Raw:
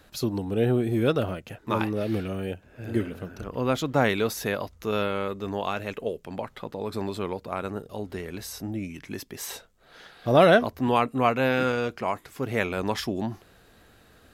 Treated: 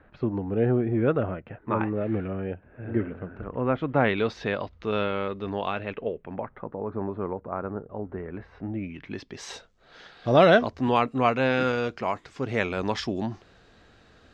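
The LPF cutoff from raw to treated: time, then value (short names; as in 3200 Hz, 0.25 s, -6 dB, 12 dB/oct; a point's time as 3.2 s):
LPF 24 dB/oct
3.75 s 2100 Hz
4.28 s 4000 Hz
5.63 s 4000 Hz
6.74 s 1500 Hz
8.1 s 1500 Hz
8.8 s 2600 Hz
9.5 s 6400 Hz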